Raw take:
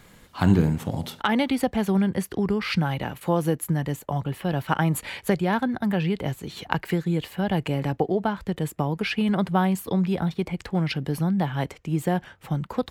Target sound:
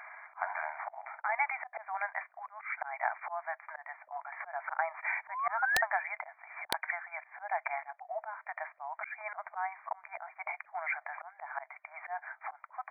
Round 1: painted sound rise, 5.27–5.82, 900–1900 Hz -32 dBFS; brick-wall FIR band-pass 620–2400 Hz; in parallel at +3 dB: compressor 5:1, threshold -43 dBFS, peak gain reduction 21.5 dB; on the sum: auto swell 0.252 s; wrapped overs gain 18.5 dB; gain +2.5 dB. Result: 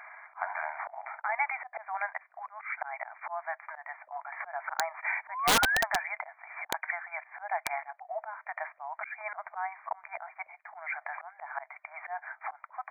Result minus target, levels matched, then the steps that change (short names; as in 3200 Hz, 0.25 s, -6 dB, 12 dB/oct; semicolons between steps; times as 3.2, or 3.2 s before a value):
compressor: peak gain reduction -9 dB
change: compressor 5:1, threshold -54 dBFS, peak gain reduction 30.5 dB